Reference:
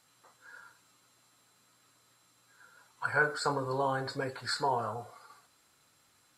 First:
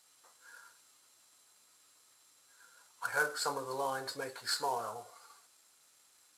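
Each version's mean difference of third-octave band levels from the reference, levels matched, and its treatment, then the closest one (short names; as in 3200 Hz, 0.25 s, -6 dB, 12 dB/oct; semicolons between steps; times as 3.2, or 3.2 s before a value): 5.5 dB: CVSD 64 kbps; tone controls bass -12 dB, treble +7 dB; gain -4 dB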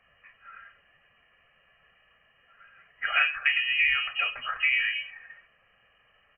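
17.0 dB: comb 1.7 ms, depth 70%; inverted band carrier 3000 Hz; gain +5 dB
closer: first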